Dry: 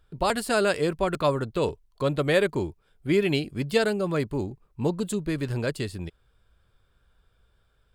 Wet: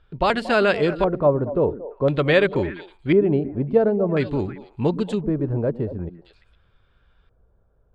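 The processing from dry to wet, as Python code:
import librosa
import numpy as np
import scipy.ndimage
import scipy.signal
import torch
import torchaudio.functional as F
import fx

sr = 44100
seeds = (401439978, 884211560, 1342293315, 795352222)

y = fx.echo_stepped(x, sr, ms=115, hz=240.0, octaves=1.4, feedback_pct=70, wet_db=-9)
y = fx.filter_lfo_lowpass(y, sr, shape='square', hz=0.48, low_hz=700.0, high_hz=3100.0, q=1.1)
y = y * librosa.db_to_amplitude(4.5)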